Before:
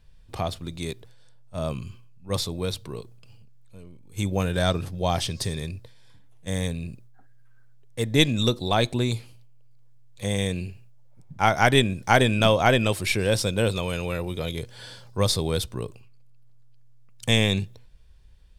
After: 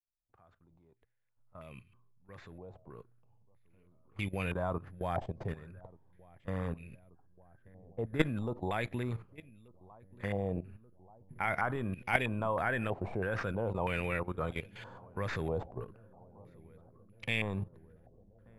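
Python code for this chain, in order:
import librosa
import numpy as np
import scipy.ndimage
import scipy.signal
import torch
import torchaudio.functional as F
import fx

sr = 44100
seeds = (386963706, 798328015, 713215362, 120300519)

y = fx.fade_in_head(x, sr, length_s=5.78)
y = fx.level_steps(y, sr, step_db=15)
y = fx.echo_filtered(y, sr, ms=1183, feedback_pct=78, hz=810.0, wet_db=-22.0)
y = (np.kron(y[::4], np.eye(4)[0]) * 4)[:len(y)]
y = fx.filter_held_lowpass(y, sr, hz=3.1, low_hz=740.0, high_hz=2400.0)
y = y * 10.0 ** (-5.0 / 20.0)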